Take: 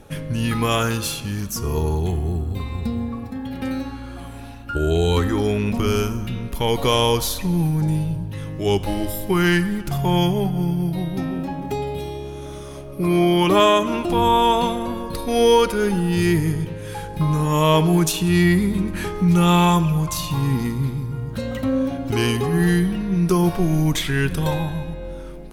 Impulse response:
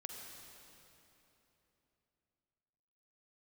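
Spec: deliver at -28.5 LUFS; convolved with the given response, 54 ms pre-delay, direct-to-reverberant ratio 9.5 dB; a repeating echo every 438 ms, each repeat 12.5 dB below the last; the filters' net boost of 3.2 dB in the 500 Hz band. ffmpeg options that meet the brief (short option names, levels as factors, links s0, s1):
-filter_complex "[0:a]equalizer=f=500:t=o:g=4,aecho=1:1:438|876|1314:0.237|0.0569|0.0137,asplit=2[s0][s1];[1:a]atrim=start_sample=2205,adelay=54[s2];[s1][s2]afir=irnorm=-1:irlink=0,volume=0.473[s3];[s0][s3]amix=inputs=2:normalize=0,volume=0.335"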